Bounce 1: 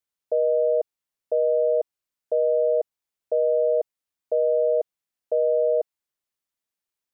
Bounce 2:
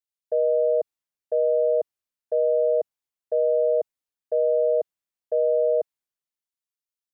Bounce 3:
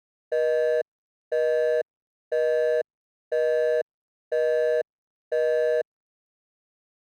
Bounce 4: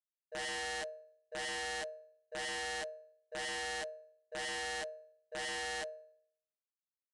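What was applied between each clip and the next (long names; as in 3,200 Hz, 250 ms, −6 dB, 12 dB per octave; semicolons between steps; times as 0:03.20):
multiband upward and downward expander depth 40%
running median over 41 samples
resonators tuned to a chord D#2 sus4, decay 0.66 s; wrap-around overflow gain 32.5 dB; downsampling to 22,050 Hz; level −3 dB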